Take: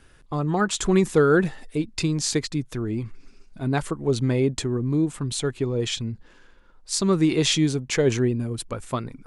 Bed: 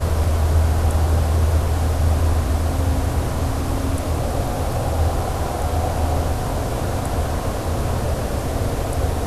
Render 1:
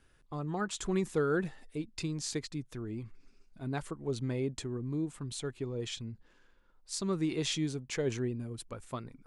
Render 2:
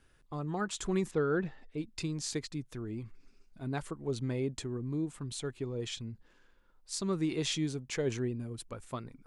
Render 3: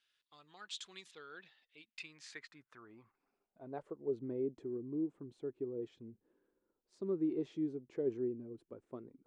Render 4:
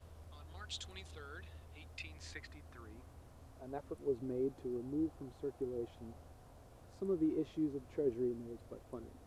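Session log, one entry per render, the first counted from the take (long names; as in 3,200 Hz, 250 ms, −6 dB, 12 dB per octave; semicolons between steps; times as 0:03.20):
level −12 dB
0:01.11–0:01.78: high-frequency loss of the air 160 metres
band-pass filter sweep 3,600 Hz → 360 Hz, 0:01.57–0:04.21
mix in bed −36.5 dB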